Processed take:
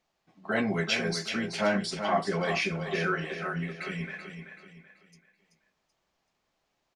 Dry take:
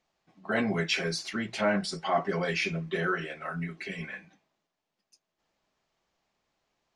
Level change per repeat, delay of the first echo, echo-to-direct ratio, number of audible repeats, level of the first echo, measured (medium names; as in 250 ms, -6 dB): -8.5 dB, 382 ms, -7.5 dB, 4, -8.0 dB